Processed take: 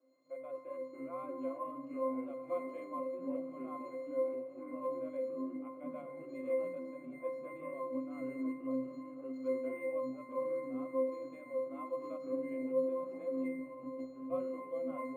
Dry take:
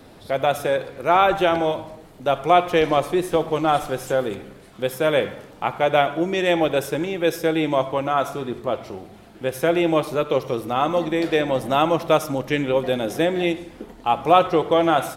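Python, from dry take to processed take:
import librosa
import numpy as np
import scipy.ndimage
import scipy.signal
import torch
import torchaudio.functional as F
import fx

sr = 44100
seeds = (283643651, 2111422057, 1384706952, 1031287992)

y = fx.halfwave_hold(x, sr, at=(8.73, 9.52), fade=0.02)
y = scipy.signal.sosfilt(scipy.signal.butter(4, 350.0, 'highpass', fs=sr, output='sos'), y)
y = fx.peak_eq(y, sr, hz=2800.0, db=-2.0, octaves=0.77)
y = fx.echo_pitch(y, sr, ms=120, semitones=-4, count=3, db_per_echo=-3.0)
y = fx.high_shelf(y, sr, hz=3900.0, db=9.5, at=(1.83, 2.88))
y = fx.over_compress(y, sr, threshold_db=-28.0, ratio=-0.5, at=(13.59, 14.3))
y = fx.octave_resonator(y, sr, note='C', decay_s=0.61)
y = fx.echo_diffused(y, sr, ms=1171, feedback_pct=44, wet_db=-13)
y = np.interp(np.arange(len(y)), np.arange(len(y))[::4], y[::4])
y = y * 10.0 ** (-3.0 / 20.0)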